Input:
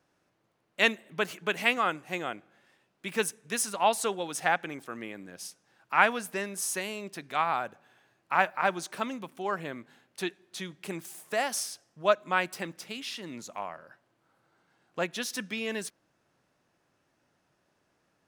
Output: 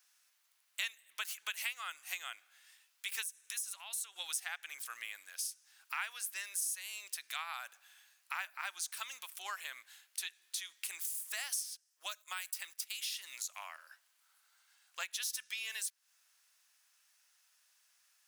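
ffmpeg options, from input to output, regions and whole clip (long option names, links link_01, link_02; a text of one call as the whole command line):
ffmpeg -i in.wav -filter_complex "[0:a]asettb=1/sr,asplit=3[link_01][link_02][link_03];[link_01]atrim=end=3.234[link_04];[link_02]atrim=start=3.23:end=4.16,asetpts=PTS-STARTPTS,afade=type=in:duration=0.004:curve=qsin,afade=type=out:start_time=0.926:duration=0.004:curve=qsin,lowshelf=frequency=270:gain=-8.5,bandreject=frequency=4800:width=9.5,acompressor=threshold=-41dB:ratio=4:attack=3.2:release=140:knee=1:detection=peak[link_05];[link_03]atrim=start=4.156[link_06];[link_04][link_05]acrossfade=duration=0.004:curve1=hsin:curve2=qsin[link_07];[link_07][link_06]acrossfade=duration=0.004:curve1=qsin:curve2=hsin,asettb=1/sr,asplit=3[link_08][link_09][link_10];[link_08]atrim=end=11.614[link_11];[link_09]atrim=start=11.61:end=13.44,asetpts=PTS-STARTPTS,afade=type=in:duration=0.004:curve=qsin,afade=type=out:start_time=1.826:duration=0.004:curve=qsin,agate=range=-11dB:threshold=-47dB:ratio=16:release=100:detection=peak,highshelf=frequency=10000:gain=7,acrossover=split=350|5300[link_12][link_13][link_14];[link_12]acompressor=threshold=-42dB:ratio=4[link_15];[link_13]acompressor=threshold=-32dB:ratio=4[link_16];[link_14]acompressor=threshold=-45dB:ratio=4[link_17];[link_15][link_16][link_17]amix=inputs=3:normalize=0[link_18];[link_10]atrim=start=13.436[link_19];[link_11][link_18]acrossfade=duration=0.004:curve1=hsin:curve2=qsin[link_20];[link_20][link_19]acrossfade=duration=0.004:curve1=qsin:curve2=hsin,highpass=1100,aderivative,acompressor=threshold=-50dB:ratio=4,volume=12dB" out.wav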